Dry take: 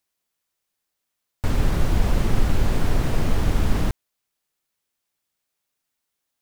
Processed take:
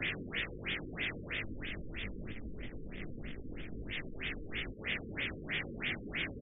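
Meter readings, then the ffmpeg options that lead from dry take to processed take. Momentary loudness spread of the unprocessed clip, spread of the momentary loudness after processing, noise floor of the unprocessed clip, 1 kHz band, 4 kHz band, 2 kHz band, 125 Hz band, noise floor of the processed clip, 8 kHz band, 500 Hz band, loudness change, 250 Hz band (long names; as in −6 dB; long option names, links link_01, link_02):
5 LU, 10 LU, −80 dBFS, −18.0 dB, −2.0 dB, +1.0 dB, −19.5 dB, −47 dBFS, below −40 dB, −13.0 dB, −15.0 dB, −13.5 dB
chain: -filter_complex "[0:a]aeval=exprs='val(0)+0.5*0.0501*sgn(val(0))':channel_layout=same,areverse,acompressor=threshold=-30dB:ratio=10,areverse,tiltshelf=frequency=1200:gain=7.5,asoftclip=type=tanh:threshold=-21dB,flanger=delay=18:depth=2.9:speed=2.1,aecho=1:1:794:0.708,alimiter=level_in=6dB:limit=-24dB:level=0:latency=1:release=304,volume=-6dB,acrossover=split=230|830|2300[link_01][link_02][link_03][link_04];[link_01]acompressor=threshold=-50dB:ratio=4[link_05];[link_02]acompressor=threshold=-49dB:ratio=4[link_06];[link_03]acompressor=threshold=-49dB:ratio=4[link_07];[link_04]acompressor=threshold=-50dB:ratio=4[link_08];[link_05][link_06][link_07][link_08]amix=inputs=4:normalize=0,firequalizer=gain_entry='entry(290,0);entry(930,-15);entry(2000,15)':delay=0.05:min_phase=1,afftfilt=real='re*lt(b*sr/1024,500*pow(3700/500,0.5+0.5*sin(2*PI*3.1*pts/sr)))':imag='im*lt(b*sr/1024,500*pow(3700/500,0.5+0.5*sin(2*PI*3.1*pts/sr)))':win_size=1024:overlap=0.75,volume=5.5dB"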